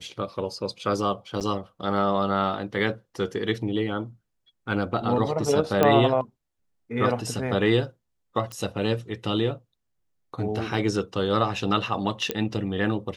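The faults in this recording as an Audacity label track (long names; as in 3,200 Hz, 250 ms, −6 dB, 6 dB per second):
1.400000	1.410000	drop-out 8.3 ms
5.830000	5.830000	click −7 dBFS
8.520000	8.520000	click −21 dBFS
12.310000	12.310000	click −9 dBFS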